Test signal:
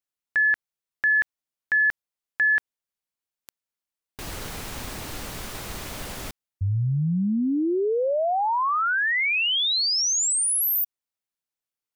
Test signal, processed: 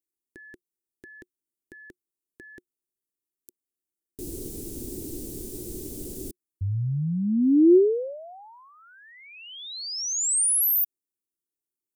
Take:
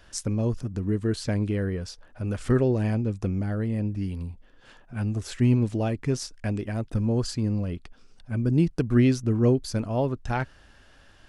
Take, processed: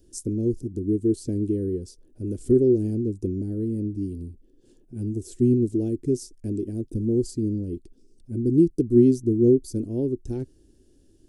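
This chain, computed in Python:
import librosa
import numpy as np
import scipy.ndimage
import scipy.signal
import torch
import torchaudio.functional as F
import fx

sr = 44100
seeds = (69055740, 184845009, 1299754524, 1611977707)

y = fx.curve_eq(x, sr, hz=(190.0, 360.0, 620.0, 1200.0, 2100.0, 8700.0), db=(0, 13, -14, -28, -23, 4))
y = y * 10.0 ** (-3.0 / 20.0)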